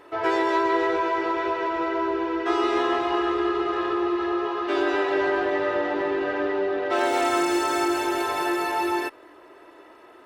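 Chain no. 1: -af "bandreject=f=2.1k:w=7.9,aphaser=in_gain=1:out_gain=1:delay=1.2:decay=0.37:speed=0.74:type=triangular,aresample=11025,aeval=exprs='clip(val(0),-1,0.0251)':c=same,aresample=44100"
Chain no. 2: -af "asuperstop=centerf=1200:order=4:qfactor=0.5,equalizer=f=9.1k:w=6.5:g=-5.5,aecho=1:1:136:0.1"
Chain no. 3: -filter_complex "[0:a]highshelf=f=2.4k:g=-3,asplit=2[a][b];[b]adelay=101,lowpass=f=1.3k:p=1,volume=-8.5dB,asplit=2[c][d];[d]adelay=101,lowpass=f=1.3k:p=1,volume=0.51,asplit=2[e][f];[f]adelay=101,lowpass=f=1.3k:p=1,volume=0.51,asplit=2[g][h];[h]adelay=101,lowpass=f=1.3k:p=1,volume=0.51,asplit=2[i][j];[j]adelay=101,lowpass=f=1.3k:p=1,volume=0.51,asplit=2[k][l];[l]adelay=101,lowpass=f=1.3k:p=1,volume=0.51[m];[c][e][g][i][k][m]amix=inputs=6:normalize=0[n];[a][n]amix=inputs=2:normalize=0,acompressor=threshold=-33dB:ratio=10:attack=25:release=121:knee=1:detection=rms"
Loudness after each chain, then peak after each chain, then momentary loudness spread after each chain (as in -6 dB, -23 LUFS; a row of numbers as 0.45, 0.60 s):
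-26.5, -28.0, -35.0 LUFS; -8.5, -15.0, -23.0 dBFS; 4, 4, 2 LU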